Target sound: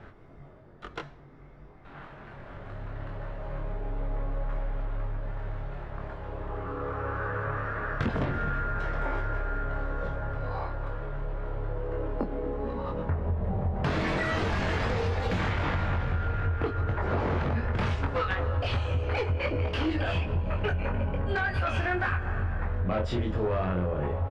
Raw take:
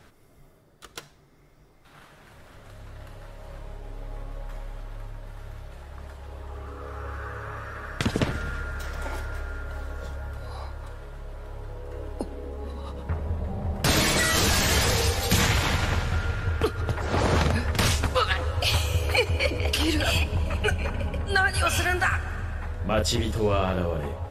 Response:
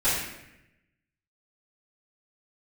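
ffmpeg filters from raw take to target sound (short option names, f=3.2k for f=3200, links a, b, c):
-filter_complex "[0:a]aeval=exprs='0.376*sin(PI/2*2.82*val(0)/0.376)':c=same,lowpass=1.9k,asplit=2[a][b];[b]adelay=22,volume=-4dB[c];[a][c]amix=inputs=2:normalize=0,acompressor=threshold=-17dB:ratio=6,volume=-8dB"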